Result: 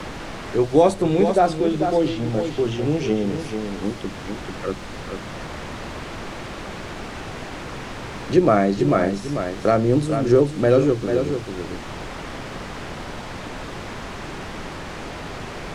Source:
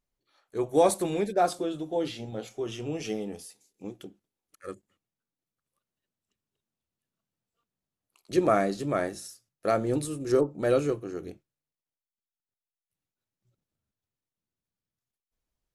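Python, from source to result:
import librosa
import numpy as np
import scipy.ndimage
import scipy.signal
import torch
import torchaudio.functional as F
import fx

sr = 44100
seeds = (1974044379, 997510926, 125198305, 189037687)

y = fx.low_shelf(x, sr, hz=280.0, db=7.5)
y = fx.dmg_noise_colour(y, sr, seeds[0], colour='pink', level_db=-44.0)
y = fx.air_absorb(y, sr, metres=82.0)
y = y + 10.0 ** (-9.0 / 20.0) * np.pad(y, (int(442 * sr / 1000.0), 0))[:len(y)]
y = fx.band_squash(y, sr, depth_pct=40)
y = y * 10.0 ** (7.5 / 20.0)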